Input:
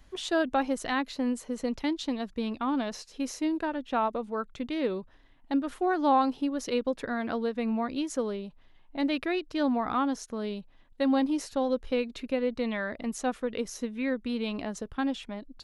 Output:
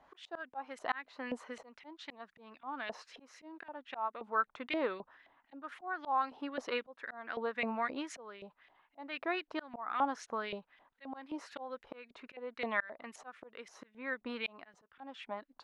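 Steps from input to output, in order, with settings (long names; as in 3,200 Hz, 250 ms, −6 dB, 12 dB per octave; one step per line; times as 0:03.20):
auto-filter band-pass saw up 3.8 Hz 680–2,400 Hz
volume swells 453 ms
level +9 dB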